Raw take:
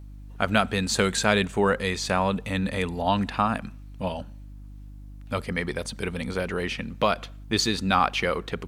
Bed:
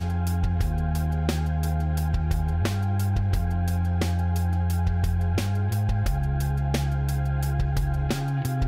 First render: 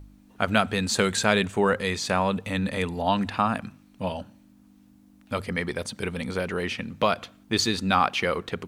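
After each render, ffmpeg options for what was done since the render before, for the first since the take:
-af "bandreject=f=50:t=h:w=4,bandreject=f=100:t=h:w=4,bandreject=f=150:t=h:w=4"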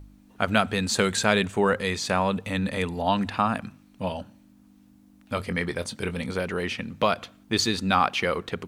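-filter_complex "[0:a]asettb=1/sr,asplit=3[a][b][c];[a]atrim=end=5.344[d];[b]atrim=start=5.34:end=6.32,asetpts=PTS-STARTPTS,afade=t=in:d=0.004:c=qsin,afade=t=out:st=0.976:d=0.004:c=qsin,asplit=2[e][f];[f]adelay=23,volume=-12dB[g];[e][g]amix=inputs=2:normalize=0,atrim=end_sample=43218[h];[c]atrim=start=6.316[i];[d][h]acrossfade=d=0.004:c1=hsin:c2=qsin[j];[j][i]acrossfade=d=0.004:c1=qsin:c2=hsin"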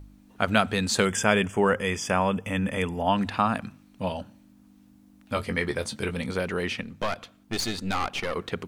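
-filter_complex "[0:a]asplit=3[a][b][c];[a]afade=t=out:st=1.04:d=0.02[d];[b]asuperstop=centerf=4100:order=20:qfactor=3.2,afade=t=in:st=1.04:d=0.02,afade=t=out:st=3.16:d=0.02[e];[c]afade=t=in:st=3.16:d=0.02[f];[d][e][f]amix=inputs=3:normalize=0,asettb=1/sr,asplit=3[g][h][i];[g]atrim=end=5.334[j];[h]atrim=start=5.33:end=6.11,asetpts=PTS-STARTPTS,afade=t=in:d=0.004:c=qsin,afade=t=out:st=0.776:d=0.004:c=qsin,asplit=2[k][l];[l]adelay=14,volume=-8.5dB[m];[k][m]amix=inputs=2:normalize=0,atrim=end_sample=34398[n];[i]atrim=start=6.106[o];[j][n]acrossfade=d=0.004:c1=hsin:c2=qsin[p];[p][o]acrossfade=d=0.004:c1=qsin:c2=hsin,asettb=1/sr,asplit=3[q][r][s];[q]atrim=end=6.814[t];[r]atrim=start=6.81:end=8.36,asetpts=PTS-STARTPTS,afade=t=in:d=0.004:c=qsin,afade=t=out:st=1.546:d=0.004:c=qsin,aeval=exprs='(tanh(12.6*val(0)+0.7)-tanh(0.7))/12.6':c=same[u];[s]atrim=start=8.356[v];[t][u]acrossfade=d=0.004:c1=hsin:c2=qsin[w];[w][v]acrossfade=d=0.004:c1=qsin:c2=hsin"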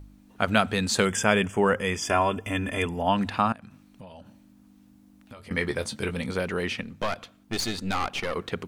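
-filter_complex "[0:a]asettb=1/sr,asplit=3[a][b][c];[a]atrim=end=2.024[d];[b]atrim=start=2.02:end=2.86,asetpts=PTS-STARTPTS,afade=t=in:d=0.004:c=qsin,afade=t=out:st=0.836:d=0.004:c=qsin,aecho=1:1:2.9:0.7,atrim=end_sample=37044[e];[c]atrim=start=2.856[f];[d][e]acrossfade=d=0.004:c1=hsin:c2=qsin[g];[g][f]acrossfade=d=0.004:c1=qsin:c2=hsin,asettb=1/sr,asplit=3[h][i][j];[h]atrim=end=3.524[k];[i]atrim=start=3.52:end=5.51,asetpts=PTS-STARTPTS,afade=t=in:d=0.004:c=qsin,afade=t=out:st=1.986:d=0.004:c=qsin,acompressor=threshold=-41dB:ratio=10:attack=3.2:release=140:knee=1:detection=peak[l];[j]atrim=start=5.506[m];[k][l]acrossfade=d=0.004:c1=hsin:c2=qsin[n];[n][m]acrossfade=d=0.004:c1=qsin:c2=hsin"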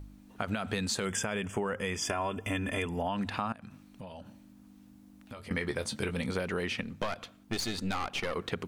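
-af "alimiter=limit=-14.5dB:level=0:latency=1:release=93,acompressor=threshold=-29dB:ratio=6"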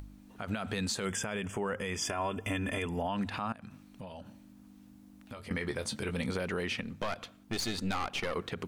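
-af "acompressor=mode=upward:threshold=-53dB:ratio=2.5,alimiter=limit=-23.5dB:level=0:latency=1:release=50"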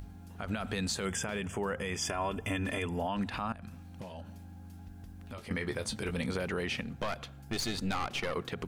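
-filter_complex "[1:a]volume=-25.5dB[a];[0:a][a]amix=inputs=2:normalize=0"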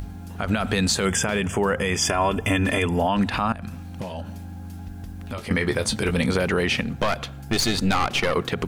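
-af "volume=12dB"

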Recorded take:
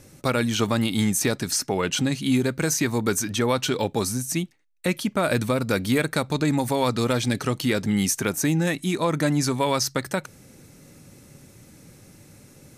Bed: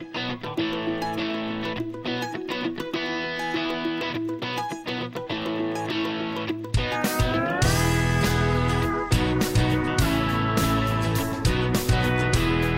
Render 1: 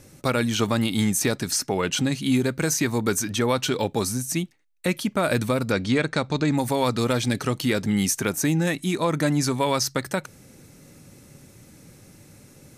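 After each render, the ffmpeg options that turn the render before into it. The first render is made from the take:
-filter_complex "[0:a]asplit=3[a][b][c];[a]afade=t=out:st=5.7:d=0.02[d];[b]lowpass=f=7k:w=0.5412,lowpass=f=7k:w=1.3066,afade=t=in:st=5.7:d=0.02,afade=t=out:st=6.53:d=0.02[e];[c]afade=t=in:st=6.53:d=0.02[f];[d][e][f]amix=inputs=3:normalize=0"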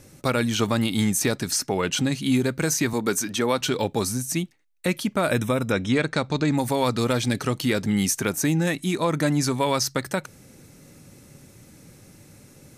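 -filter_complex "[0:a]asettb=1/sr,asplit=3[a][b][c];[a]atrim=end=2.934[d];[b]atrim=start=2.93:end=3.61,asetpts=PTS-STARTPTS,afade=t=in:d=0.004:c=qsin,afade=t=out:st=0.676:d=0.004:c=qsin,highpass=170[e];[c]atrim=start=3.606[f];[d][e]acrossfade=d=0.004:c1=hsin:c2=qsin[g];[g][f]acrossfade=d=0.004:c1=qsin:c2=hsin,asplit=3[h][i][j];[h]afade=t=out:st=5.29:d=0.02[k];[i]asuperstop=centerf=4500:order=12:qfactor=4.6,afade=t=in:st=5.29:d=0.02,afade=t=out:st=5.92:d=0.02[l];[j]afade=t=in:st=5.92:d=0.02[m];[k][l][m]amix=inputs=3:normalize=0"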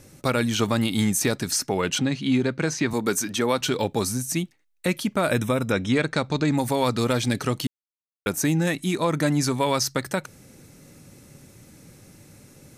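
-filter_complex "[0:a]asettb=1/sr,asplit=3[a][b][c];[a]atrim=end=1.984[d];[b]atrim=start=1.98:end=2.91,asetpts=PTS-STARTPTS,afade=t=in:d=0.004:c=qsin,afade=t=out:st=0.926:d=0.004:c=qsin,highpass=100,lowpass=4.6k[e];[c]atrim=start=2.906[f];[d][e]acrossfade=d=0.004:c1=hsin:c2=qsin[g];[g][f]acrossfade=d=0.004:c1=qsin:c2=hsin,asplit=3[h][i][j];[h]atrim=end=7.67,asetpts=PTS-STARTPTS,afade=t=out:st=7.666:d=0.004:c=hsin[k];[i]atrim=start=7.67:end=8.26,asetpts=PTS-STARTPTS,volume=0[l];[j]atrim=start=8.26,asetpts=PTS-STARTPTS,afade=t=in:d=0.004:c=hsin[m];[k][l][m]concat=n=3:v=0:a=1"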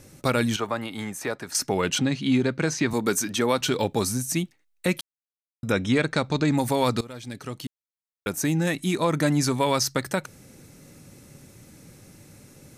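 -filter_complex "[0:a]asettb=1/sr,asplit=3[a][b][c];[a]atrim=end=0.564[d];[b]atrim=start=0.56:end=1.55,asetpts=PTS-STARTPTS,afade=t=in:d=0.004:c=qsin,afade=t=out:st=0.986:d=0.004:c=qsin,acrossover=split=440 2100:gain=0.224 1 0.224[e][f][g];[e][f][g]amix=inputs=3:normalize=0[h];[c]atrim=start=1.546[i];[d][h]acrossfade=d=0.004:c1=hsin:c2=qsin[j];[j][i]acrossfade=d=0.004:c1=qsin:c2=hsin,asplit=4[k][l][m][n];[k]atrim=end=5.01,asetpts=PTS-STARTPTS,afade=t=out:st=5.006:d=0.004:c=hsin[o];[l]atrim=start=5.01:end=5.63,asetpts=PTS-STARTPTS,volume=0[p];[m]atrim=start=5.63:end=7.01,asetpts=PTS-STARTPTS,afade=t=in:d=0.004:c=hsin,afade=t=out:st=1.376:d=0.004:c=hsin:silence=0.0944061[q];[n]atrim=start=7.01,asetpts=PTS-STARTPTS,afade=t=in:d=1.9:silence=0.0944061[r];[o][p][q][r]concat=n=4:v=0:a=1"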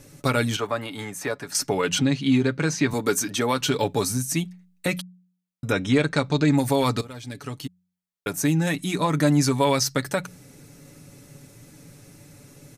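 -af "aecho=1:1:7:0.5,bandreject=f=90.3:t=h:w=4,bandreject=f=180.6:t=h:w=4"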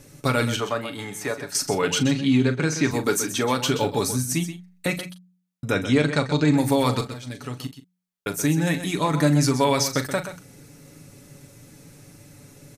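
-filter_complex "[0:a]asplit=2[a][b];[b]adelay=40,volume=-11.5dB[c];[a][c]amix=inputs=2:normalize=0,asplit=2[d][e];[e]aecho=0:1:128:0.282[f];[d][f]amix=inputs=2:normalize=0"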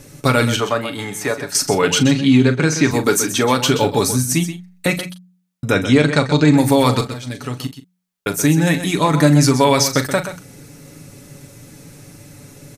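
-af "volume=7dB,alimiter=limit=-2dB:level=0:latency=1"

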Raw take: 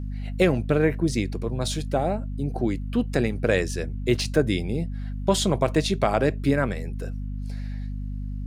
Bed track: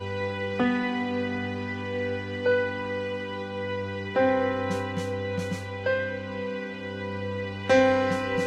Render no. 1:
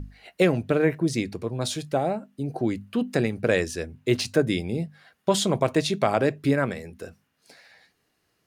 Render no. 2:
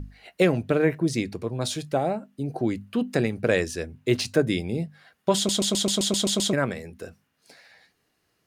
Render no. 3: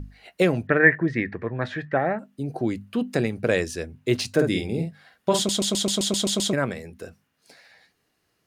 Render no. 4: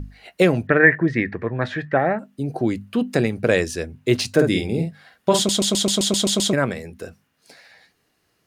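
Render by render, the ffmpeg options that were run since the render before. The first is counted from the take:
-af "bandreject=f=50:t=h:w=6,bandreject=f=100:t=h:w=6,bandreject=f=150:t=h:w=6,bandreject=f=200:t=h:w=6,bandreject=f=250:t=h:w=6"
-filter_complex "[0:a]asplit=10[a][b][c][d][e][f][g][h][i][j];[a]atrim=end=5.492[k];[b]atrim=start=5.358:end=5.492[l];[c]atrim=start=5.358:end=5.492[m];[d]atrim=start=5.358:end=5.492[n];[e]atrim=start=5.358:end=5.492[o];[f]atrim=start=5.358:end=5.492[p];[g]atrim=start=5.358:end=5.492[q];[h]atrim=start=5.358:end=5.492[r];[i]atrim=start=5.358:end=5.492[s];[j]atrim=start=6.528[t];[k][l]acrossfade=d=0.004:c1=hsin:c2=hsin[u];[u][m]acrossfade=d=0.004:c1=hsin:c2=hsin[v];[v][n]acrossfade=d=0.004:c1=hsin:c2=hsin[w];[w][o]acrossfade=d=0.004:c1=hsin:c2=hsin[x];[x][p]acrossfade=d=0.004:c1=hsin:c2=hsin[y];[y][q]acrossfade=d=0.004:c1=hsin:c2=hsin[z];[z][r]acrossfade=d=0.004:c1=hsin:c2=hsin[aa];[aa][s]acrossfade=d=0.004:c1=hsin:c2=hsin[ab];[ab][t]acrossfade=d=0.004:c1=hsin:c2=hsin"
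-filter_complex "[0:a]asettb=1/sr,asplit=3[a][b][c];[a]atrim=end=0.674[d];[b]atrim=start=0.67:end=2.19,asetpts=PTS-STARTPTS,afade=t=in:d=0.004:c=qsin,afade=t=out:st=1.516:d=0.004:c=qsin,lowpass=f=1.8k:t=q:w=12[e];[c]atrim=start=2.186[f];[d][e]acrossfade=d=0.004:c1=hsin:c2=qsin[g];[g][f]acrossfade=d=0.004:c1=qsin:c2=hsin,asettb=1/sr,asplit=3[h][i][j];[h]atrim=end=4.344[k];[i]atrim=start=4.34:end=5.42,asetpts=PTS-STARTPTS,afade=t=in:d=0.004:c=qsin,afade=t=out:st=1.076:d=0.004:c=qsin,asplit=2[l][m];[m]adelay=49,volume=-5dB[n];[l][n]amix=inputs=2:normalize=0,atrim=end_sample=47628[o];[j]atrim=start=5.416[p];[k][o]acrossfade=d=0.004:c1=hsin:c2=qsin[q];[q][p]acrossfade=d=0.004:c1=qsin:c2=hsin"
-af "volume=4dB,alimiter=limit=-1dB:level=0:latency=1"

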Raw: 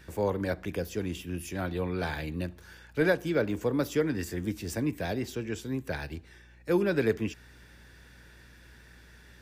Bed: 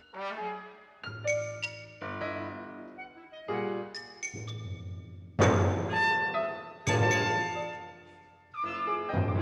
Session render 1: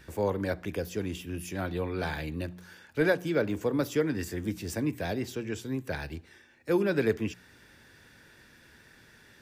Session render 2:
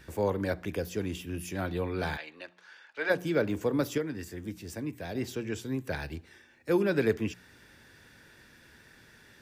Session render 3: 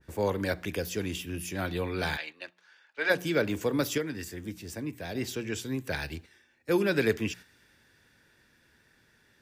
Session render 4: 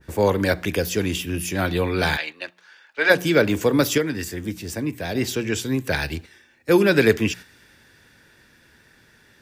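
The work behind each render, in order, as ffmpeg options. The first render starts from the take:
-af "bandreject=f=60:t=h:w=4,bandreject=f=120:t=h:w=4,bandreject=f=180:t=h:w=4"
-filter_complex "[0:a]asplit=3[a][b][c];[a]afade=t=out:st=2.16:d=0.02[d];[b]highpass=770,lowpass=4.4k,afade=t=in:st=2.16:d=0.02,afade=t=out:st=3.09:d=0.02[e];[c]afade=t=in:st=3.09:d=0.02[f];[d][e][f]amix=inputs=3:normalize=0,asplit=3[g][h][i];[g]atrim=end=3.982[j];[h]atrim=start=3.978:end=5.152,asetpts=PTS-STARTPTS,volume=-6dB[k];[i]atrim=start=5.148[l];[j][k]acrossfade=d=0.004:c1=hsin:c2=hsin[m];[m][l]acrossfade=d=0.004:c1=hsin:c2=hsin"
-af "agate=range=-8dB:threshold=-46dB:ratio=16:detection=peak,adynamicequalizer=threshold=0.00562:dfrequency=1600:dqfactor=0.7:tfrequency=1600:tqfactor=0.7:attack=5:release=100:ratio=0.375:range=3.5:mode=boostabove:tftype=highshelf"
-af "volume=9.5dB"

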